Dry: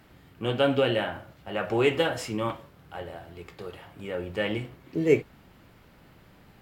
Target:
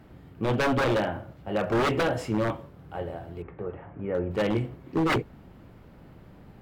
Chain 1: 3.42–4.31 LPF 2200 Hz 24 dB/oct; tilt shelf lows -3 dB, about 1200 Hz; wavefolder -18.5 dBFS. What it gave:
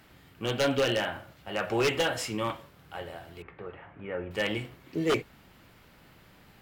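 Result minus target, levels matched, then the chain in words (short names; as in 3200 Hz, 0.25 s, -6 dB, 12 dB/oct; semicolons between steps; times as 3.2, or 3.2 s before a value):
1000 Hz band -3.0 dB
3.42–4.31 LPF 2200 Hz 24 dB/oct; tilt shelf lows +6.5 dB, about 1200 Hz; wavefolder -18.5 dBFS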